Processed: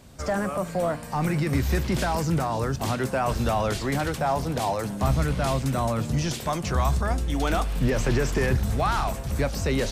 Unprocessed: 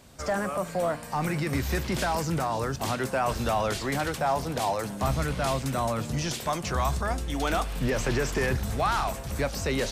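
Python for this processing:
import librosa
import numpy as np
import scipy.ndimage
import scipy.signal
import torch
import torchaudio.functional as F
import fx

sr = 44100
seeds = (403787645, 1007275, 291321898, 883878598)

y = fx.low_shelf(x, sr, hz=330.0, db=6.0)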